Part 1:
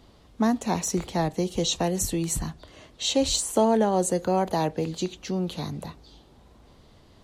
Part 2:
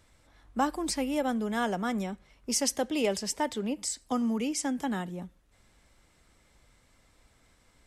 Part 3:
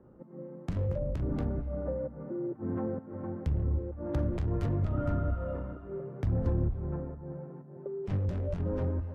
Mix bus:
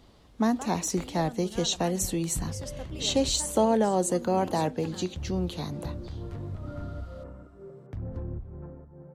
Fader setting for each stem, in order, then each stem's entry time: -2.0 dB, -14.0 dB, -7.0 dB; 0.00 s, 0.00 s, 1.70 s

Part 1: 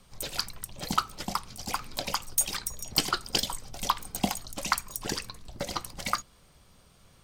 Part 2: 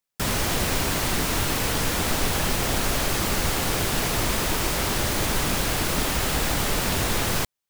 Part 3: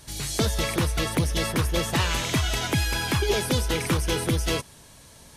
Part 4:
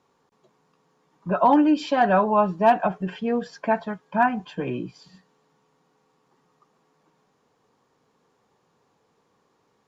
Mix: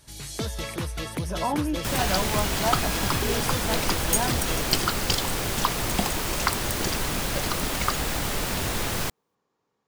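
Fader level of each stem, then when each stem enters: +1.0 dB, -3.5 dB, -6.5 dB, -10.0 dB; 1.75 s, 1.65 s, 0.00 s, 0.00 s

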